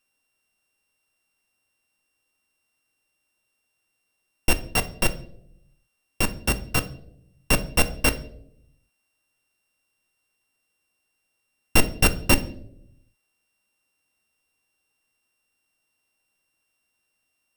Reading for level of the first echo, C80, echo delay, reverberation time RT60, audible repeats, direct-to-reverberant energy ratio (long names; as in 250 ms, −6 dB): no echo audible, 19.5 dB, no echo audible, 0.75 s, no echo audible, 9.5 dB